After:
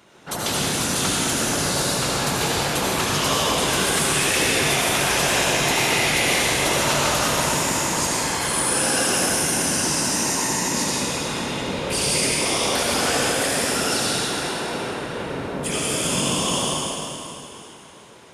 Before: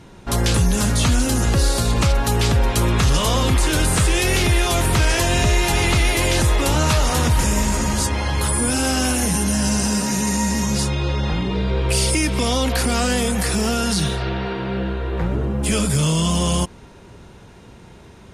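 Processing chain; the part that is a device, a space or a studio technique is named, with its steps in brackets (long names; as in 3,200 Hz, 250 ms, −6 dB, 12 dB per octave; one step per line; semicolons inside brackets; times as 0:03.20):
whispering ghost (random phases in short frames; high-pass filter 550 Hz 6 dB per octave; convolution reverb RT60 3.0 s, pre-delay 67 ms, DRR −5 dB)
level −4 dB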